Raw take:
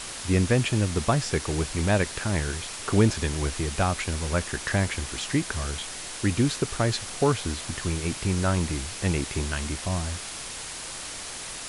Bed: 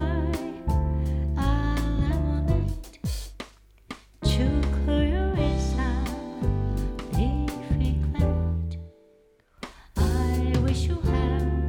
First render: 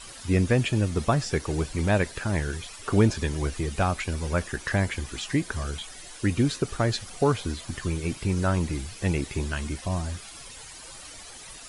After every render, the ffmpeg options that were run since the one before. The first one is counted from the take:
ffmpeg -i in.wav -af "afftdn=noise_reduction=12:noise_floor=-37" out.wav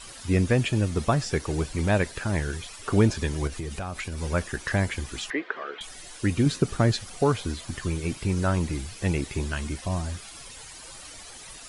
ffmpeg -i in.wav -filter_complex "[0:a]asettb=1/sr,asplit=3[link_01][link_02][link_03];[link_01]atrim=end=3.474[link_04];[link_02]atrim=start=3.47:end=4.2,asetpts=PTS-STARTPTS,afade=type=in:duration=0.004:curve=qsin,afade=type=out:start_time=0.726:duration=0.004:curve=qsin,acompressor=threshold=-28dB:ratio=12:attack=3.2:release=140:knee=1:detection=peak[link_05];[link_03]atrim=start=4.196[link_06];[link_04][link_05]acrossfade=duration=0.004:curve1=hsin:curve2=qsin[link_07];[link_07][link_06]acrossfade=duration=0.004:curve1=qsin:curve2=hsin,asettb=1/sr,asplit=3[link_08][link_09][link_10];[link_08]atrim=end=5.304[link_11];[link_09]atrim=start=5.3:end=5.81,asetpts=PTS-STARTPTS,afade=type=in:duration=0.004:curve=qsin,afade=type=out:start_time=0.506:duration=0.004:curve=qsin,highpass=frequency=340:width=0.5412,highpass=frequency=340:width=1.3066,equalizer=frequency=450:width_type=q:width=4:gain=5,equalizer=frequency=1300:width_type=q:width=4:gain=5,equalizer=frequency=1900:width_type=q:width=4:gain=5,lowpass=frequency=3100:width=0.5412,lowpass=frequency=3100:width=1.3066[link_12];[link_10]atrim=start=5.806[link_13];[link_11][link_12]acrossfade=duration=0.004:curve1=hsin:curve2=qsin[link_14];[link_14][link_13]acrossfade=duration=0.004:curve1=qsin:curve2=hsin,asettb=1/sr,asplit=3[link_15][link_16][link_17];[link_15]atrim=end=6.464[link_18];[link_16]atrim=start=6.46:end=6.92,asetpts=PTS-STARTPTS,afade=type=in:duration=0.004:curve=qsin,afade=type=out:start_time=0.456:duration=0.004:curve=qsin,equalizer=frequency=180:width=0.93:gain=7[link_19];[link_17]atrim=start=6.916[link_20];[link_18][link_19]acrossfade=duration=0.004:curve1=hsin:curve2=qsin[link_21];[link_21][link_20]acrossfade=duration=0.004:curve1=qsin:curve2=hsin" out.wav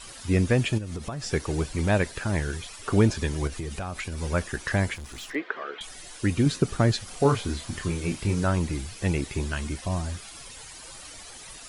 ffmpeg -i in.wav -filter_complex "[0:a]asplit=3[link_01][link_02][link_03];[link_01]afade=type=out:start_time=0.77:duration=0.02[link_04];[link_02]acompressor=threshold=-29dB:ratio=10:attack=3.2:release=140:knee=1:detection=peak,afade=type=in:start_time=0.77:duration=0.02,afade=type=out:start_time=1.23:duration=0.02[link_05];[link_03]afade=type=in:start_time=1.23:duration=0.02[link_06];[link_04][link_05][link_06]amix=inputs=3:normalize=0,asplit=3[link_07][link_08][link_09];[link_07]afade=type=out:start_time=4.94:duration=0.02[link_10];[link_08]aeval=exprs='(tanh(63.1*val(0)+0.35)-tanh(0.35))/63.1':channel_layout=same,afade=type=in:start_time=4.94:duration=0.02,afade=type=out:start_time=5.34:duration=0.02[link_11];[link_09]afade=type=in:start_time=5.34:duration=0.02[link_12];[link_10][link_11][link_12]amix=inputs=3:normalize=0,asettb=1/sr,asplit=3[link_13][link_14][link_15];[link_13]atrim=end=7.054[link_16];[link_14]atrim=start=7.05:end=8.44,asetpts=PTS-STARTPTS,afade=type=in:duration=0.004:curve=qsin,afade=type=out:start_time=1.386:duration=0.004:curve=qsin,asplit=2[link_17][link_18];[link_18]adelay=29,volume=-5.5dB[link_19];[link_17][link_19]amix=inputs=2:normalize=0,atrim=end_sample=61299[link_20];[link_15]atrim=start=8.436[link_21];[link_16][link_20]acrossfade=duration=0.004:curve1=hsin:curve2=qsin[link_22];[link_22][link_21]acrossfade=duration=0.004:curve1=qsin:curve2=hsin" out.wav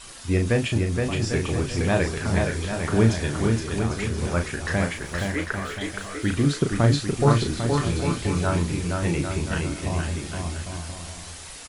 ffmpeg -i in.wav -filter_complex "[0:a]asplit=2[link_01][link_02];[link_02]adelay=35,volume=-6dB[link_03];[link_01][link_03]amix=inputs=2:normalize=0,aecho=1:1:470|799|1029|1191|1303:0.631|0.398|0.251|0.158|0.1" out.wav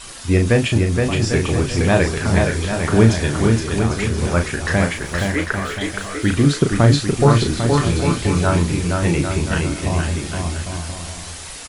ffmpeg -i in.wav -af "volume=6.5dB,alimiter=limit=-1dB:level=0:latency=1" out.wav

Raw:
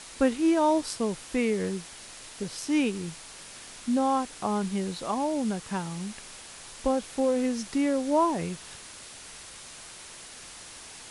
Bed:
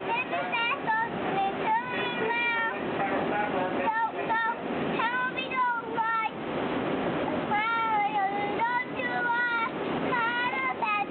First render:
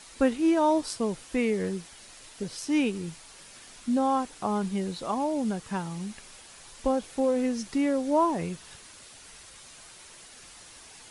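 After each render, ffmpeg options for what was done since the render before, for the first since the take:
ffmpeg -i in.wav -af "afftdn=noise_reduction=6:noise_floor=-46" out.wav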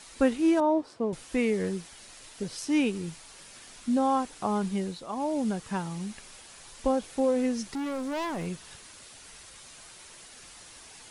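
ffmpeg -i in.wav -filter_complex "[0:a]asettb=1/sr,asplit=3[link_01][link_02][link_03];[link_01]atrim=end=0.604[link_04];[link_02]atrim=start=0.6:end=1.13,asetpts=PTS-STARTPTS,afade=type=in:duration=0.004:curve=qsin,afade=type=out:start_time=0.526:duration=0.004:curve=qsin,bandpass=frequency=420:width_type=q:width=0.57[link_05];[link_03]atrim=start=1.126[link_06];[link_04][link_05]acrossfade=duration=0.004:curve1=hsin:curve2=qsin[link_07];[link_07][link_06]acrossfade=duration=0.004:curve1=qsin:curve2=hsin,asettb=1/sr,asplit=3[link_08][link_09][link_10];[link_08]atrim=end=7.674[link_11];[link_09]atrim=start=7.67:end=8.47,asetpts=PTS-STARTPTS,afade=type=in:duration=0.004:curve=qsin,afade=type=out:start_time=0.796:duration=0.004:curve=qsin,asoftclip=type=hard:threshold=-30dB[link_12];[link_10]atrim=start=8.466[link_13];[link_11][link_12]acrossfade=duration=0.004:curve1=hsin:curve2=qsin[link_14];[link_14][link_13]acrossfade=duration=0.004:curve1=qsin:curve2=hsin,asplit=3[link_15][link_16][link_17];[link_15]atrim=end=5.06,asetpts=PTS-STARTPTS,afade=type=out:start_time=4.71:duration=0.35:curve=qsin:silence=0.375837[link_18];[link_16]atrim=start=5.06:end=5.07,asetpts=PTS-STARTPTS,volume=-8.5dB[link_19];[link_17]atrim=start=5.07,asetpts=PTS-STARTPTS,afade=type=in:duration=0.35:curve=qsin:silence=0.375837[link_20];[link_18][link_19][link_20]concat=n=3:v=0:a=1" out.wav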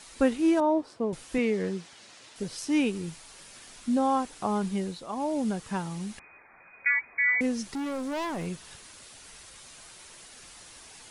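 ffmpeg -i in.wav -filter_complex "[0:a]asettb=1/sr,asplit=3[link_01][link_02][link_03];[link_01]atrim=end=1.384[link_04];[link_02]atrim=start=1.38:end=2.36,asetpts=PTS-STARTPTS,afade=type=in:duration=0.004:curve=qsin,afade=type=out:start_time=0.976:duration=0.004:curve=qsin,highpass=120,lowpass=6400[link_05];[link_03]atrim=start=2.356[link_06];[link_04][link_05]acrossfade=duration=0.004:curve1=hsin:curve2=qsin[link_07];[link_07][link_06]acrossfade=duration=0.004:curve1=qsin:curve2=hsin,asettb=1/sr,asplit=3[link_08][link_09][link_10];[link_08]atrim=end=6.194[link_11];[link_09]atrim=start=6.19:end=7.41,asetpts=PTS-STARTPTS,afade=type=in:duration=0.004:curve=qsin,afade=type=out:start_time=1.216:duration=0.004:curve=qsin,lowpass=frequency=2100:width_type=q:width=0.5098,lowpass=frequency=2100:width_type=q:width=0.6013,lowpass=frequency=2100:width_type=q:width=0.9,lowpass=frequency=2100:width_type=q:width=2.563,afreqshift=-2500[link_12];[link_10]atrim=start=7.406[link_13];[link_11][link_12]acrossfade=duration=0.004:curve1=hsin:curve2=qsin[link_14];[link_14][link_13]acrossfade=duration=0.004:curve1=qsin:curve2=hsin" out.wav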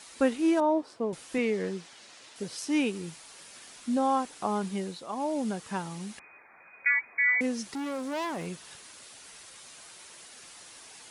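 ffmpeg -i in.wav -af "highpass=frequency=220:poles=1" out.wav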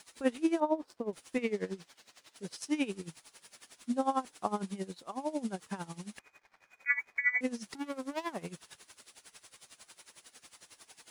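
ffmpeg -i in.wav -af "aeval=exprs='sgn(val(0))*max(abs(val(0))-0.00112,0)':channel_layout=same,aeval=exprs='val(0)*pow(10,-18*(0.5-0.5*cos(2*PI*11*n/s))/20)':channel_layout=same" out.wav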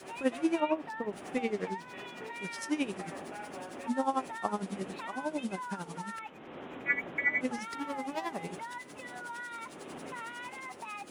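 ffmpeg -i in.wav -i bed.wav -filter_complex "[1:a]volume=-15dB[link_01];[0:a][link_01]amix=inputs=2:normalize=0" out.wav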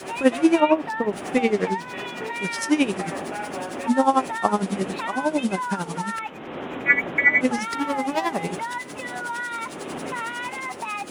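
ffmpeg -i in.wav -af "volume=12dB" out.wav

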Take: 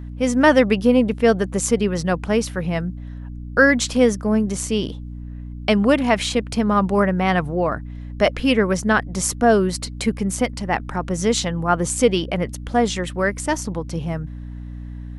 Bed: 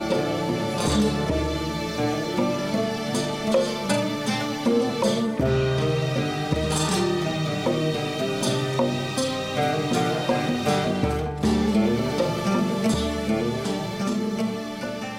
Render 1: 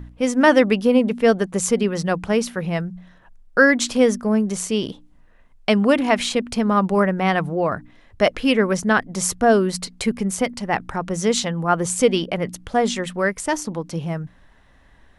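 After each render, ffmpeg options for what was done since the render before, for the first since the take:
ffmpeg -i in.wav -af "bandreject=frequency=60:width_type=h:width=4,bandreject=frequency=120:width_type=h:width=4,bandreject=frequency=180:width_type=h:width=4,bandreject=frequency=240:width_type=h:width=4,bandreject=frequency=300:width_type=h:width=4" out.wav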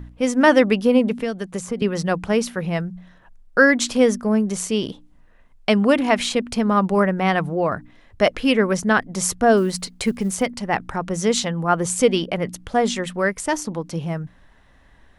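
ffmpeg -i in.wav -filter_complex "[0:a]asettb=1/sr,asplit=3[link_01][link_02][link_03];[link_01]atrim=end=1.194[link_04];[link_02]atrim=start=1.19:end=1.82,asetpts=PTS-STARTPTS,afade=type=in:duration=0.004:curve=qsin,afade=type=out:start_time=0.626:duration=0.004:curve=qsin,acrossover=split=230|2000[link_05][link_06][link_07];[link_05]acompressor=threshold=-31dB:ratio=4[link_08];[link_06]acompressor=threshold=-27dB:ratio=4[link_09];[link_07]acompressor=threshold=-37dB:ratio=4[link_10];[link_08][link_09][link_10]amix=inputs=3:normalize=0[link_11];[link_03]atrim=start=1.816[link_12];[link_04][link_11]acrossfade=duration=0.004:curve1=hsin:curve2=qsin[link_13];[link_13][link_12]acrossfade=duration=0.004:curve1=qsin:curve2=hsin,asettb=1/sr,asplit=3[link_14][link_15][link_16];[link_14]atrim=end=9.574[link_17];[link_15]atrim=start=9.57:end=10.43,asetpts=PTS-STARTPTS,afade=type=in:duration=0.004:curve=qsin,afade=type=out:start_time=0.856:duration=0.004:curve=qsin,acrusher=bits=9:mode=log:mix=0:aa=0.000001[link_18];[link_16]atrim=start=10.426[link_19];[link_17][link_18]acrossfade=duration=0.004:curve1=hsin:curve2=qsin[link_20];[link_20][link_19]acrossfade=duration=0.004:curve1=qsin:curve2=hsin" out.wav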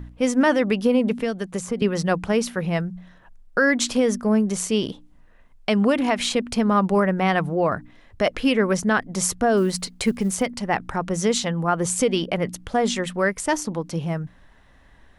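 ffmpeg -i in.wav -af "alimiter=limit=-9.5dB:level=0:latency=1:release=107" out.wav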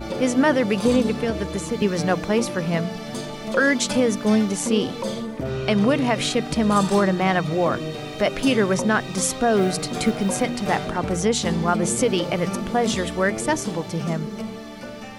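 ffmpeg -i in.wav -i bed.wav -filter_complex "[1:a]volume=-5.5dB[link_01];[0:a][link_01]amix=inputs=2:normalize=0" out.wav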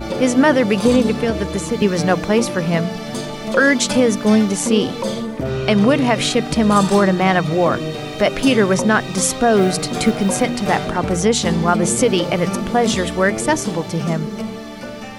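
ffmpeg -i in.wav -af "volume=5dB,alimiter=limit=-3dB:level=0:latency=1" out.wav

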